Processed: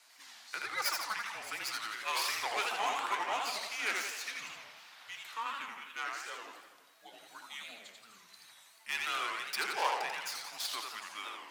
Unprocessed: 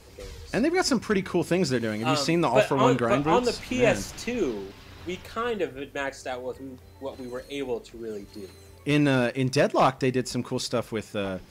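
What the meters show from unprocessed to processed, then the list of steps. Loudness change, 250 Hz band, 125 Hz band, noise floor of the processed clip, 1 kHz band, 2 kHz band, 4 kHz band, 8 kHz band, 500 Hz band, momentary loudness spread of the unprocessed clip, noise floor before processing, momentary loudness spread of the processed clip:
−10.5 dB, −31.5 dB, below −35 dB, −61 dBFS, −7.5 dB, −4.5 dB, −3.5 dB, −4.5 dB, −22.0 dB, 17 LU, −49 dBFS, 19 LU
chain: stylus tracing distortion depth 0.099 ms
high-pass filter 1,100 Hz 24 dB per octave
frequency shifter −220 Hz
bucket-brigade delay 67 ms, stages 2,048, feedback 71%, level −15 dB
feedback echo with a swinging delay time 83 ms, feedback 58%, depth 216 cents, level −3.5 dB
level −5.5 dB

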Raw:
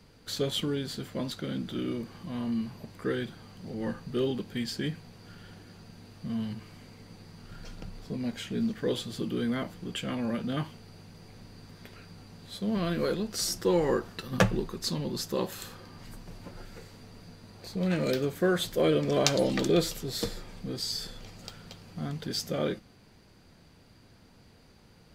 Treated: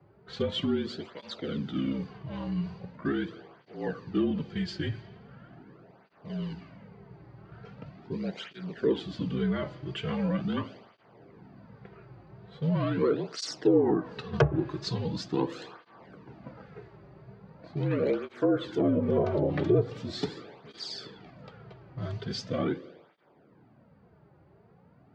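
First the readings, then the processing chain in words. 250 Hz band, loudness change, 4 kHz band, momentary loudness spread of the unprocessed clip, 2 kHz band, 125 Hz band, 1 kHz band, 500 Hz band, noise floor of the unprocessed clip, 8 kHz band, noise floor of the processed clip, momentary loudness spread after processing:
+1.0 dB, +0.5 dB, −5.0 dB, 23 LU, −3.5 dB, +2.0 dB, −1.0 dB, +0.5 dB, −57 dBFS, −12.5 dB, −60 dBFS, 22 LU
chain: parametric band 630 Hz +2.5 dB 1.8 octaves
frequency shifter −45 Hz
high-frequency loss of the air 56 metres
low-pass that shuts in the quiet parts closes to 1,100 Hz, open at −27 dBFS
spring reverb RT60 1.4 s, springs 41/45 ms, chirp 55 ms, DRR 15.5 dB
treble cut that deepens with the level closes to 810 Hz, closed at −19.5 dBFS
high-pass filter 96 Hz
through-zero flanger with one copy inverted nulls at 0.41 Hz, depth 4.6 ms
level +3 dB

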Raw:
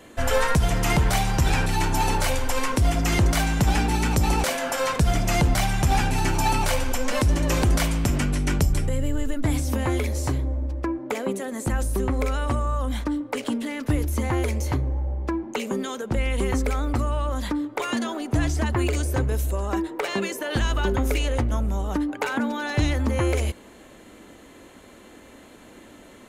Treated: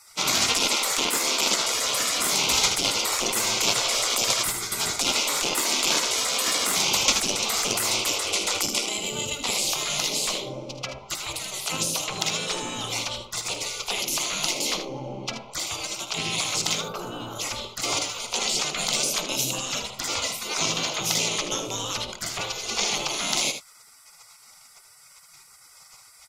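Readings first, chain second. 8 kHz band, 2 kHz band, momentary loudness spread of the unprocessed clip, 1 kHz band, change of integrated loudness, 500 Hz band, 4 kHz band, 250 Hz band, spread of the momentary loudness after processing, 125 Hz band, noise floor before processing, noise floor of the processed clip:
+10.0 dB, +0.5 dB, 6 LU, −3.0 dB, +0.5 dB, −5.0 dB, +10.5 dB, −11.0 dB, 9 LU, −17.5 dB, −48 dBFS, −52 dBFS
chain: Butterworth band-reject 1,700 Hz, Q 2.4
soft clipping −17.5 dBFS, distortion −16 dB
gain on a spectral selection 0:16.81–0:17.40, 1,600–11,000 Hz −15 dB
flat-topped bell 4,100 Hz +15 dB
gate on every frequency bin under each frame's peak −20 dB weak
on a send: ambience of single reflections 53 ms −15.5 dB, 78 ms −9.5 dB
on the sum: level +7 dB

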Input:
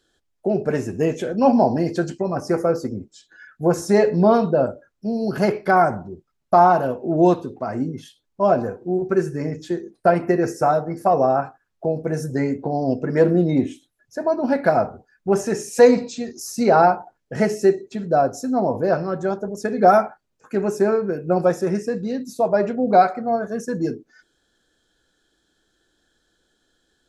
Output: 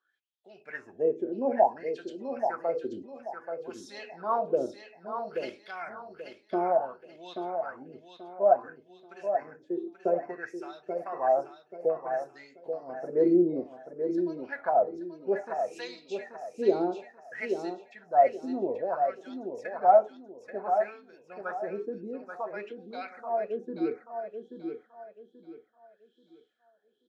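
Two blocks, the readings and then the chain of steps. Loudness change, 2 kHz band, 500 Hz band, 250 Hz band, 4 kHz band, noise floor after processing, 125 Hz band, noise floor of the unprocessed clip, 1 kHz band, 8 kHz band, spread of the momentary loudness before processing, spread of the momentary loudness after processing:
−10.0 dB, −12.0 dB, −9.5 dB, −12.5 dB, below −10 dB, −68 dBFS, −24.5 dB, −72 dBFS, −9.5 dB, below −20 dB, 13 LU, 18 LU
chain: LFO wah 0.58 Hz 330–3,600 Hz, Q 5.8
repeating echo 833 ms, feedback 31%, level −7 dB

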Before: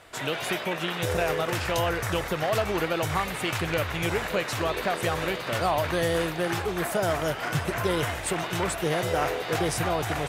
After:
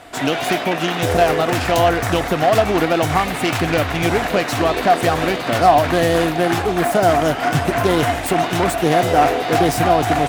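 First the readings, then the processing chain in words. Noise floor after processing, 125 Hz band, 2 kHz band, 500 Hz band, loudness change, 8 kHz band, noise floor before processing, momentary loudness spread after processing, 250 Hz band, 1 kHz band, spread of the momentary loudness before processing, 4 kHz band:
−25 dBFS, +8.5 dB, +8.0 dB, +10.5 dB, +10.5 dB, +6.5 dB, −34 dBFS, 4 LU, +12.0 dB, +13.0 dB, 3 LU, +7.5 dB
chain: phase distortion by the signal itself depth 0.088 ms
hollow resonant body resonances 270/710 Hz, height 11 dB, ringing for 45 ms
level +8 dB

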